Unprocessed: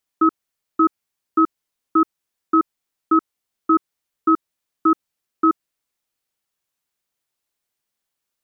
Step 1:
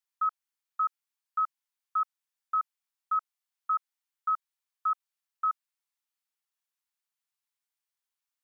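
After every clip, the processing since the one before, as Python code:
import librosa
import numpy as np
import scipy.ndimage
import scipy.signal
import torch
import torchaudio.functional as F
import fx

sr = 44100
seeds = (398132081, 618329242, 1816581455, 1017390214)

y = scipy.signal.sosfilt(scipy.signal.butter(6, 790.0, 'highpass', fs=sr, output='sos'), x)
y = y * 10.0 ** (-9.0 / 20.0)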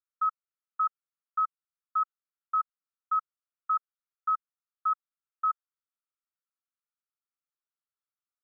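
y = fx.bandpass_q(x, sr, hz=1300.0, q=6.4)
y = y * 10.0 ** (1.0 / 20.0)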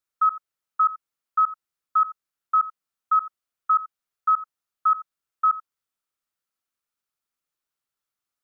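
y = x + 10.0 ** (-16.5 / 20.0) * np.pad(x, (int(86 * sr / 1000.0), 0))[:len(x)]
y = y * 10.0 ** (7.5 / 20.0)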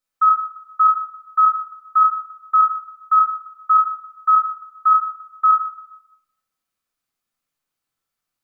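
y = fx.room_shoebox(x, sr, seeds[0], volume_m3=350.0, walls='mixed', distance_m=2.0)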